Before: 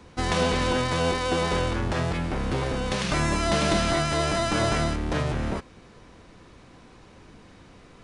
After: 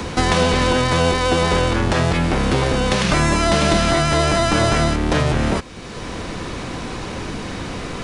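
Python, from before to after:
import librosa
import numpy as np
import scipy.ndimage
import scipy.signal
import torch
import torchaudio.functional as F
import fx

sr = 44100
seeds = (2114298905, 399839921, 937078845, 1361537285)

y = fx.band_squash(x, sr, depth_pct=70)
y = y * librosa.db_to_amplitude(7.5)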